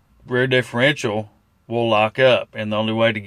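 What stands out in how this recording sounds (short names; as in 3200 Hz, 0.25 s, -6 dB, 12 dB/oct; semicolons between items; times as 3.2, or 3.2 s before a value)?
noise floor -61 dBFS; spectral tilt -3.5 dB/oct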